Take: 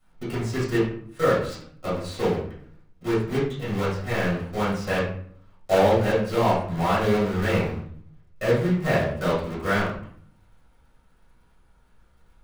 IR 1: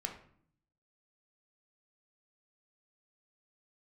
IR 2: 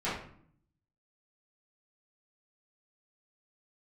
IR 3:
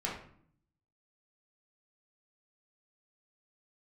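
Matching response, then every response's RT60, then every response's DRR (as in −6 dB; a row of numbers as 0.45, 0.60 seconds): 2; 0.60, 0.60, 0.60 seconds; 3.0, −12.0, −4.5 decibels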